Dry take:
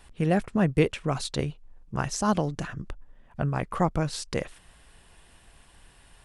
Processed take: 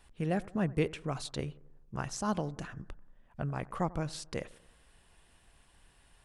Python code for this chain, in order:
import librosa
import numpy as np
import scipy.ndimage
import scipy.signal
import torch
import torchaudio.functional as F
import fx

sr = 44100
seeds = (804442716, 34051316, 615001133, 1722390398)

y = fx.echo_bbd(x, sr, ms=90, stages=1024, feedback_pct=52, wet_db=-21.0)
y = F.gain(torch.from_numpy(y), -8.0).numpy()